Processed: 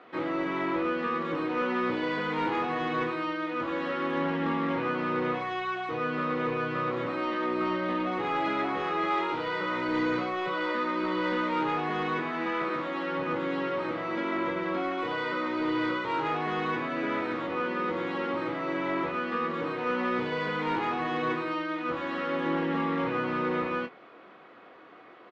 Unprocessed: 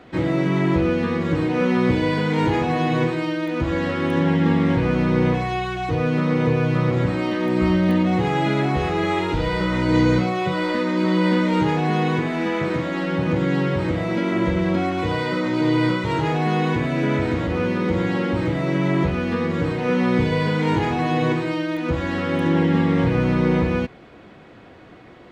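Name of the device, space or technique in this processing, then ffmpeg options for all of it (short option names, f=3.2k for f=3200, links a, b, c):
intercom: -filter_complex "[0:a]highpass=360,lowpass=3.6k,equalizer=f=1.2k:t=o:w=0.36:g=8,asoftclip=type=tanh:threshold=-14.5dB,asplit=2[a][b];[b]adelay=25,volume=-7.5dB[c];[a][c]amix=inputs=2:normalize=0,volume=-5.5dB"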